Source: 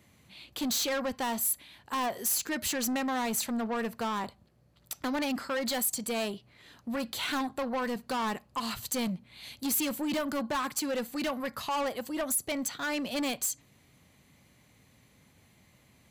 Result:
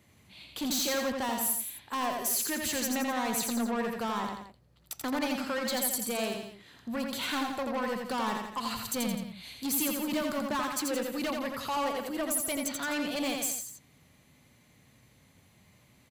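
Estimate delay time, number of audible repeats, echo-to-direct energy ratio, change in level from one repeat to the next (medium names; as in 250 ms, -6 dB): 85 ms, 3, -3.0 dB, -6.0 dB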